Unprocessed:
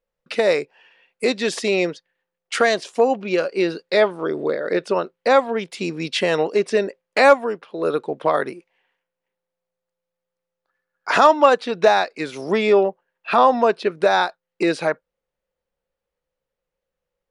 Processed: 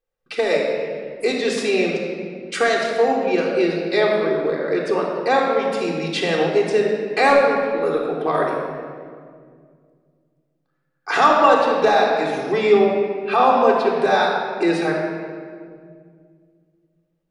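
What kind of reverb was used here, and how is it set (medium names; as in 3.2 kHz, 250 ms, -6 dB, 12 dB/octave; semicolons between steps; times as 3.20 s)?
simulated room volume 3700 m³, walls mixed, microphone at 3.7 m; trim -4.5 dB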